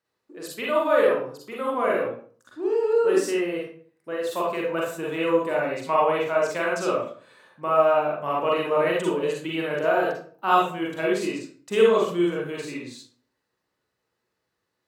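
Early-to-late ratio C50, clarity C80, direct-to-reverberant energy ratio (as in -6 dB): 1.5 dB, 6.5 dB, -4.5 dB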